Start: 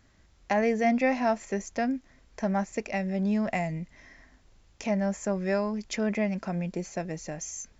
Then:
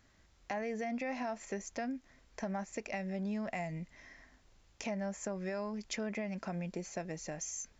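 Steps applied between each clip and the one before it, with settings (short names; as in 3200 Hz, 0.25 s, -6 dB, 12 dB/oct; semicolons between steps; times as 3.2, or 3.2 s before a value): low shelf 380 Hz -4 dB; limiter -21.5 dBFS, peak gain reduction 7 dB; compressor 2.5:1, threshold -34 dBFS, peak gain reduction 6 dB; gain -2.5 dB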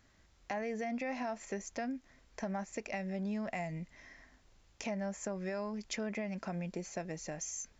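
nothing audible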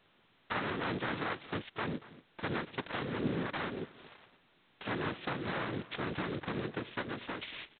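noise vocoder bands 3; echo 0.233 s -18.5 dB; gain +1.5 dB; G.726 16 kbps 8000 Hz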